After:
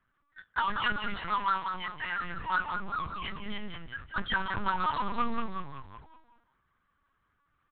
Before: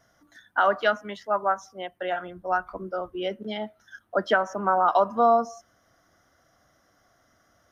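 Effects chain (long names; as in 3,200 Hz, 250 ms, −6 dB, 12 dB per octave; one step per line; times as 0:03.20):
Chebyshev band-stop filter 250–930 Hz, order 4
low-pass that shuts in the quiet parts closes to 1,300 Hz, open at −18.5 dBFS
noise gate −53 dBFS, range −52 dB
flanger swept by the level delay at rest 2.6 ms, full sweep at −19.5 dBFS
power curve on the samples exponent 0.5
echo with shifted repeats 187 ms, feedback 46%, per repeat −45 Hz, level −6.5 dB
linear-prediction vocoder at 8 kHz pitch kept
level −5 dB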